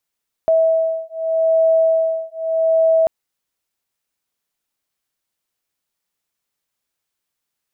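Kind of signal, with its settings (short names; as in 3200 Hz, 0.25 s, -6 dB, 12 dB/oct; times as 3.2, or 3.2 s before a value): beating tones 649 Hz, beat 0.82 Hz, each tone -16.5 dBFS 2.59 s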